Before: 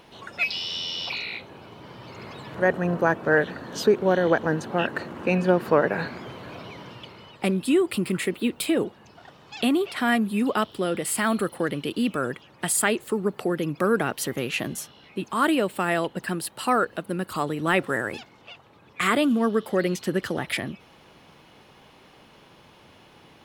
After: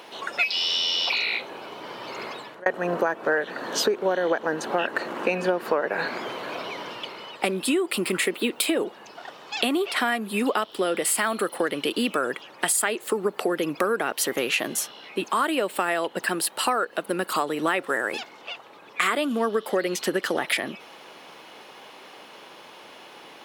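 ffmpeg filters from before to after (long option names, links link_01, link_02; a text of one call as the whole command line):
ffmpeg -i in.wav -filter_complex "[0:a]asplit=2[link_01][link_02];[link_01]atrim=end=2.66,asetpts=PTS-STARTPTS,afade=type=out:start_time=2.22:duration=0.44[link_03];[link_02]atrim=start=2.66,asetpts=PTS-STARTPTS,afade=type=in:duration=0.004:curve=hsin[link_04];[link_03][link_04]concat=n=2:v=0:a=1,highpass=380,acompressor=threshold=-29dB:ratio=6,volume=8.5dB" out.wav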